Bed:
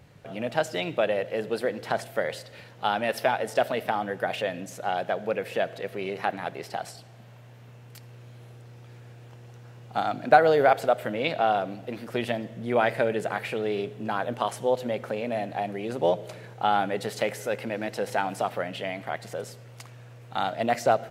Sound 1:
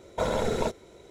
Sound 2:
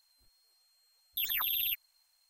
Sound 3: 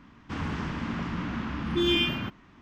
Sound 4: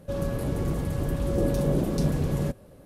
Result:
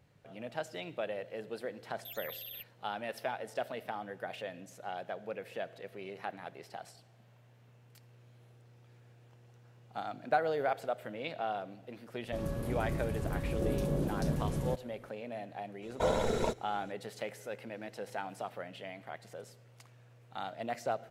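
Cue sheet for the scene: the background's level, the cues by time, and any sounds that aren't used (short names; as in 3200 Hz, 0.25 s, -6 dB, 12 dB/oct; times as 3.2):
bed -12.5 dB
0.88 add 2 -13.5 dB
12.24 add 4 -8 dB
15.82 add 1 -4 dB
not used: 3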